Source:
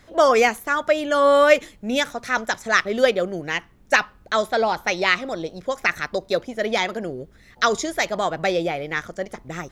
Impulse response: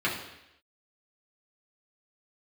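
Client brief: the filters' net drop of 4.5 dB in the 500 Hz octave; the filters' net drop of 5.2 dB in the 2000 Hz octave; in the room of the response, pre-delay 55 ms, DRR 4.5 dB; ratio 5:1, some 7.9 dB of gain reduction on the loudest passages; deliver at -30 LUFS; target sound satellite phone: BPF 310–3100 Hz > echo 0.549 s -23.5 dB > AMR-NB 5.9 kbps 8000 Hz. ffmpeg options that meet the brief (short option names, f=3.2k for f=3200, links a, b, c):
-filter_complex "[0:a]equalizer=f=500:t=o:g=-4.5,equalizer=f=2k:t=o:g=-5.5,acompressor=threshold=-23dB:ratio=5,asplit=2[a][b];[1:a]atrim=start_sample=2205,adelay=55[c];[b][c]afir=irnorm=-1:irlink=0,volume=-16dB[d];[a][d]amix=inputs=2:normalize=0,highpass=310,lowpass=3.1k,aecho=1:1:549:0.0668,volume=1dB" -ar 8000 -c:a libopencore_amrnb -b:a 5900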